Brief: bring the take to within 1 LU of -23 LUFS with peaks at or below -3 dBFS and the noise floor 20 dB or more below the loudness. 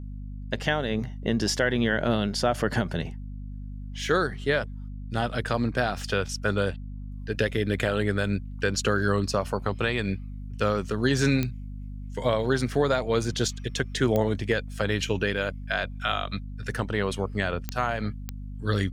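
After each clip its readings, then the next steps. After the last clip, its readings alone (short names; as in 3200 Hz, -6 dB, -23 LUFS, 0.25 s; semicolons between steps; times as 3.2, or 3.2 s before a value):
clicks 4; hum 50 Hz; harmonics up to 250 Hz; hum level -34 dBFS; loudness -27.0 LUFS; peak -9.5 dBFS; loudness target -23.0 LUFS
-> de-click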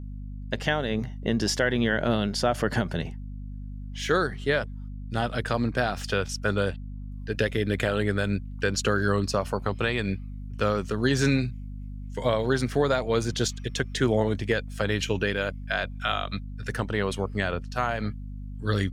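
clicks 0; hum 50 Hz; harmonics up to 250 Hz; hum level -34 dBFS
-> notches 50/100/150/200/250 Hz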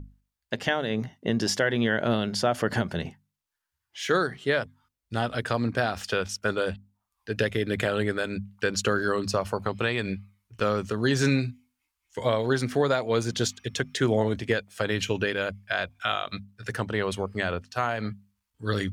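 hum none; loudness -27.5 LUFS; peak -10.5 dBFS; loudness target -23.0 LUFS
-> gain +4.5 dB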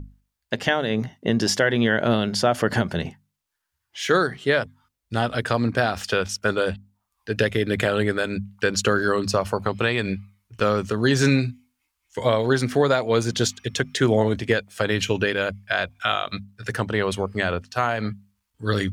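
loudness -23.0 LUFS; peak -6.0 dBFS; noise floor -79 dBFS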